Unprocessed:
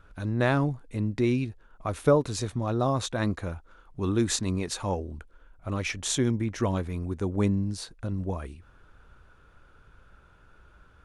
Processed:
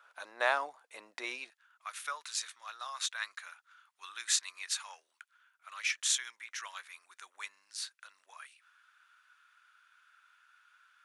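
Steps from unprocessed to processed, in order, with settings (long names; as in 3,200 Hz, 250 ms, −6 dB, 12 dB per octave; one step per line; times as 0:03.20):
high-pass filter 690 Hz 24 dB per octave, from 0:01.50 1,400 Hz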